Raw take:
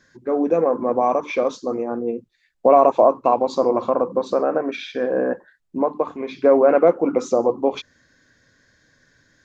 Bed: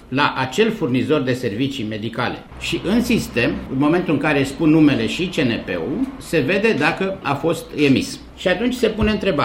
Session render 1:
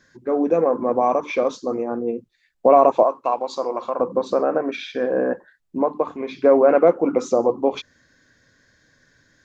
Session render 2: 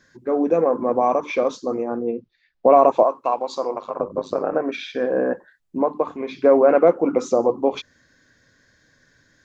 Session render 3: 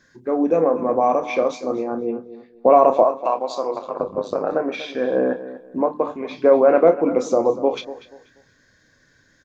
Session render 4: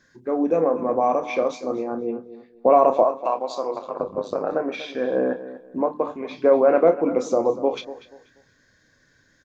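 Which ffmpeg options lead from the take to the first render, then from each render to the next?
-filter_complex "[0:a]asettb=1/sr,asplit=3[a][b][c];[a]atrim=end=3.034[d];[b]atrim=start=3.03:end=4,asetpts=PTS-STARTPTS,afade=t=in:d=0.004:c=qsin,afade=t=out:st=0.966:d=0.004:c=qsin,highpass=f=960:p=1[e];[c]atrim=start=3.996[f];[d][e]acrossfade=d=0.004:c1=hsin:c2=qsin[g];[g][f]acrossfade=d=0.004:c1=qsin:c2=hsin"
-filter_complex "[0:a]asettb=1/sr,asplit=3[a][b][c];[a]atrim=end=2.074[d];[b]atrim=start=2.07:end=2.72,asetpts=PTS-STARTPTS,afade=t=in:d=0.004:c=qsin,afade=t=out:st=0.646:d=0.004:c=qsin,lowpass=f=5k:w=0.5412,lowpass=f=5k:w=1.3066[e];[c]atrim=start=2.716[f];[d][e]acrossfade=d=0.004:c1=hsin:c2=qsin[g];[g][f]acrossfade=d=0.004:c1=qsin:c2=hsin,asettb=1/sr,asplit=3[h][i][j];[h]atrim=end=3.744[k];[i]atrim=start=3.74:end=4.53,asetpts=PTS-STARTPTS,afade=t=in:d=0.004:c=qsin,afade=t=out:st=0.786:d=0.004:c=qsin,tremolo=f=100:d=0.857[l];[j]atrim=start=4.526[m];[k][l]acrossfade=d=0.004:c1=hsin:c2=qsin[n];[n][m]acrossfade=d=0.004:c1=qsin:c2=hsin"
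-filter_complex "[0:a]asplit=2[a][b];[b]adelay=31,volume=-10.5dB[c];[a][c]amix=inputs=2:normalize=0,asplit=2[d][e];[e]adelay=241,lowpass=f=4.4k:p=1,volume=-14.5dB,asplit=2[f][g];[g]adelay=241,lowpass=f=4.4k:p=1,volume=0.27,asplit=2[h][i];[i]adelay=241,lowpass=f=4.4k:p=1,volume=0.27[j];[d][f][h][j]amix=inputs=4:normalize=0"
-af "volume=-2.5dB"

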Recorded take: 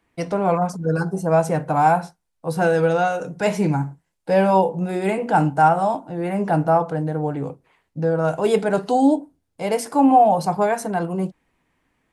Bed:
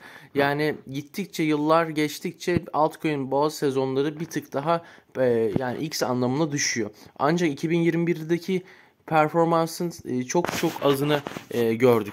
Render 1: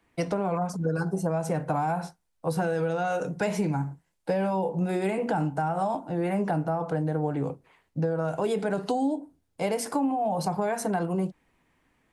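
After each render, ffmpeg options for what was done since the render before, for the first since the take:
-filter_complex "[0:a]acrossover=split=310[a][b];[b]alimiter=limit=-15dB:level=0:latency=1:release=63[c];[a][c]amix=inputs=2:normalize=0,acompressor=threshold=-23dB:ratio=10"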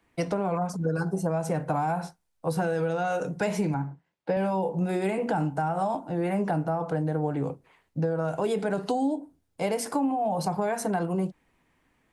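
-filter_complex "[0:a]asettb=1/sr,asplit=3[a][b][c];[a]atrim=end=3.744[d];[b]atrim=start=3.74:end=4.37,asetpts=PTS-STARTPTS,afade=t=in:d=0.004:c=qsin,afade=t=out:st=0.626:d=0.004:c=qsin,highpass=120,lowpass=3.5k[e];[c]atrim=start=4.366[f];[d][e]acrossfade=d=0.004:c1=hsin:c2=qsin[g];[g][f]acrossfade=d=0.004:c1=qsin:c2=hsin"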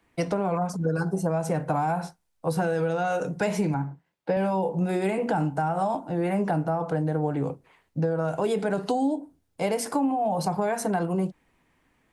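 -af "volume=1.5dB"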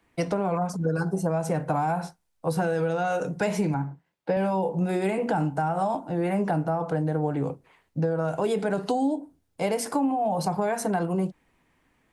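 -af anull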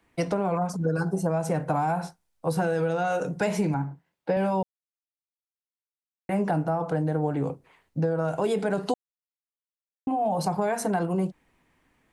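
-filter_complex "[0:a]asplit=5[a][b][c][d][e];[a]atrim=end=4.63,asetpts=PTS-STARTPTS,afade=t=out:st=4.626:d=0.004:c=hsin[f];[b]atrim=start=4.63:end=6.29,asetpts=PTS-STARTPTS,volume=0[g];[c]atrim=start=6.29:end=8.94,asetpts=PTS-STARTPTS,afade=t=in:d=0.004:c=hsin,afade=t=out:st=2.646:d=0.004:c=hsin[h];[d]atrim=start=8.94:end=10.07,asetpts=PTS-STARTPTS,volume=0[i];[e]atrim=start=10.07,asetpts=PTS-STARTPTS,afade=t=in:d=0.004:c=hsin[j];[f][g][h][i][j]concat=n=5:v=0:a=1"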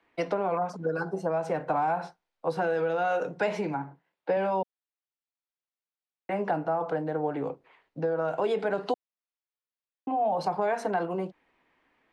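-filter_complex "[0:a]acrossover=split=290 4600:gain=0.2 1 0.0891[a][b][c];[a][b][c]amix=inputs=3:normalize=0"

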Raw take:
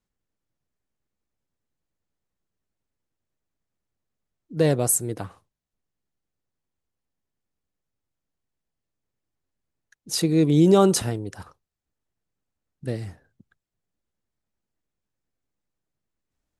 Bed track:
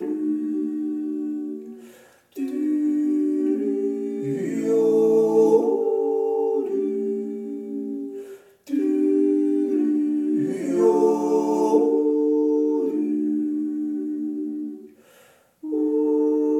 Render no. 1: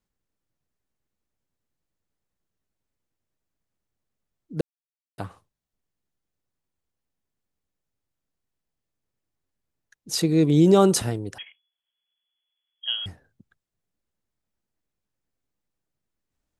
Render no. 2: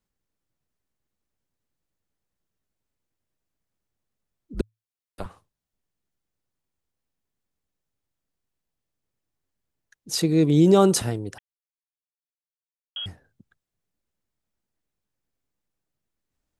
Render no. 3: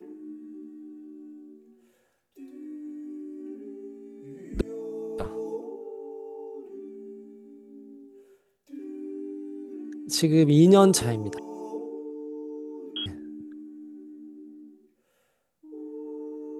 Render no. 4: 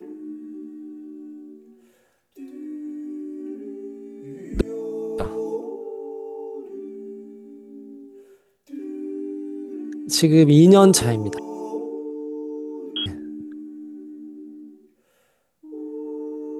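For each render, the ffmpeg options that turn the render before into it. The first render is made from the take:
-filter_complex "[0:a]asettb=1/sr,asplit=3[a][b][c];[a]atrim=end=10.114[d];[b]atrim=start=10.11:end=10.78,asetpts=PTS-STARTPTS,afade=t=in:d=0.004:c=qsin,afade=t=out:st=0.666:d=0.004:c=qsin,equalizer=f=10k:w=7.1:g=-10[e];[c]atrim=start=10.776[f];[d][e]acrossfade=d=0.004:c1=hsin:c2=qsin[g];[g][f]acrossfade=d=0.004:c1=qsin:c2=hsin,asettb=1/sr,asplit=3[h][i][j];[h]atrim=end=11.384[k];[i]atrim=start=11.38:end=13.06,asetpts=PTS-STARTPTS,afade=t=in:d=0.004:c=qsin,afade=t=out:st=1.676:d=0.004:c=qsin,lowpass=f=2.9k:t=q:w=0.5098,lowpass=f=2.9k:t=q:w=0.6013,lowpass=f=2.9k:t=q:w=0.9,lowpass=f=2.9k:t=q:w=2.563,afreqshift=-3400[l];[j]atrim=start=13.056[m];[k][l]acrossfade=d=0.004:c1=hsin:c2=qsin[n];[n][m]acrossfade=d=0.004:c1=qsin:c2=hsin,asplit=3[o][p][q];[o]atrim=end=4.61,asetpts=PTS-STARTPTS,afade=t=out:st=4.606:d=0.004:c=hsin[r];[p]atrim=start=4.61:end=5.18,asetpts=PTS-STARTPTS,volume=0[s];[q]atrim=start=5.18,asetpts=PTS-STARTPTS,afade=t=in:d=0.004:c=hsin[t];[r][s][t]concat=n=3:v=0:a=1"
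-filter_complex "[0:a]asettb=1/sr,asplit=3[a][b][c];[a]atrim=end=4.544[d];[b]atrim=start=4.54:end=5.26,asetpts=PTS-STARTPTS,afade=t=in:d=0.004:c=qsin,afade=t=out:st=0.716:d=0.004:c=qsin,afreqshift=-110[e];[c]atrim=start=5.256[f];[d][e]acrossfade=d=0.004:c1=hsin:c2=qsin[g];[g][f]acrossfade=d=0.004:c1=qsin:c2=hsin,asplit=3[h][i][j];[h]atrim=end=11.39,asetpts=PTS-STARTPTS,afade=t=out:st=11.386:d=0.004:c=hsin[k];[i]atrim=start=11.39:end=12.96,asetpts=PTS-STARTPTS,volume=0[l];[j]atrim=start=12.96,asetpts=PTS-STARTPTS,afade=t=in:d=0.004:c=hsin[m];[k][l][m]concat=n=3:v=0:a=1"
-filter_complex "[1:a]volume=-17.5dB[a];[0:a][a]amix=inputs=2:normalize=0"
-af "volume=6dB,alimiter=limit=-3dB:level=0:latency=1"

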